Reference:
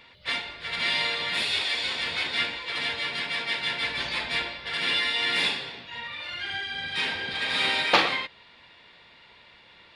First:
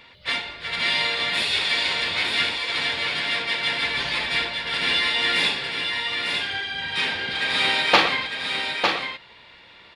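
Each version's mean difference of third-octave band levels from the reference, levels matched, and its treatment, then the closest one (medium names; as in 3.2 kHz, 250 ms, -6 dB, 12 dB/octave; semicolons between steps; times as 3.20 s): 3.5 dB: delay 903 ms -5 dB; trim +3.5 dB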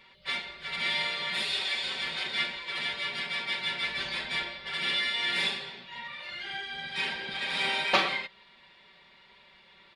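1.5 dB: comb 5.2 ms, depth 74%; trim -6 dB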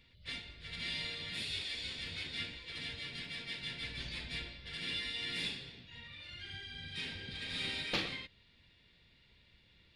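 4.5 dB: amplifier tone stack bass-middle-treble 10-0-1; trim +10 dB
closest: second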